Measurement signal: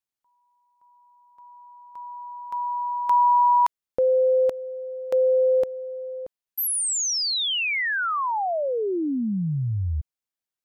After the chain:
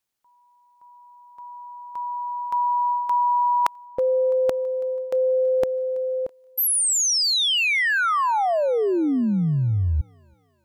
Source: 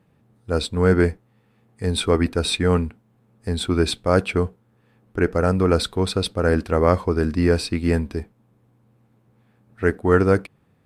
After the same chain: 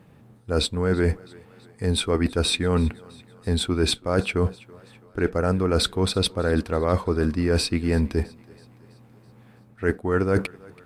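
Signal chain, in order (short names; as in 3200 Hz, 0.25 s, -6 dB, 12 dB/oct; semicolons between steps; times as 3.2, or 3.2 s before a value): reverse; compressor 6:1, threshold -28 dBFS; reverse; thinning echo 0.329 s, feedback 55%, high-pass 270 Hz, level -22.5 dB; gain +8.5 dB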